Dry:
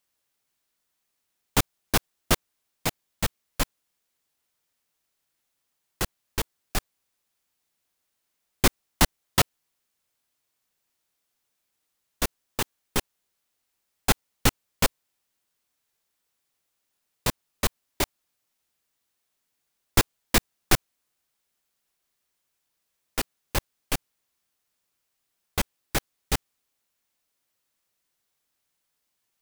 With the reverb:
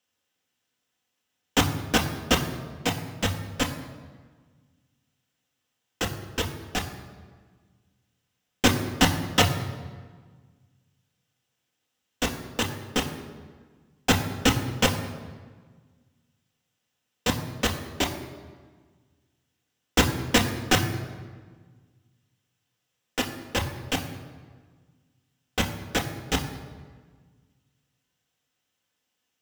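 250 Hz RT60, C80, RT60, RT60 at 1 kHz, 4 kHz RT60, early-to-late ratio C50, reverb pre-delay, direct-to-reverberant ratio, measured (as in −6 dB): 1.9 s, 10.5 dB, 1.5 s, 1.5 s, 1.1 s, 9.5 dB, 3 ms, 2.5 dB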